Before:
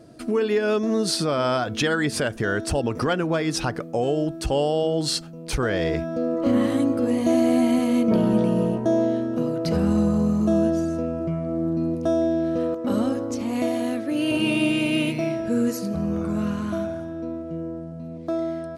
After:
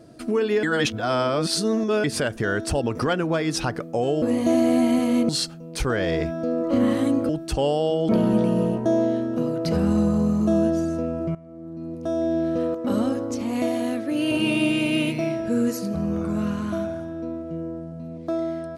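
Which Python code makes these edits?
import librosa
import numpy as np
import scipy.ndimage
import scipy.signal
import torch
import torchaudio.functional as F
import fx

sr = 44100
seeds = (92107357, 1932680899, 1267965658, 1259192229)

y = fx.edit(x, sr, fx.reverse_span(start_s=0.63, length_s=1.41),
    fx.swap(start_s=4.22, length_s=0.8, other_s=7.02, other_length_s=1.07),
    fx.fade_in_from(start_s=11.35, length_s=1.02, curve='qua', floor_db=-17.0), tone=tone)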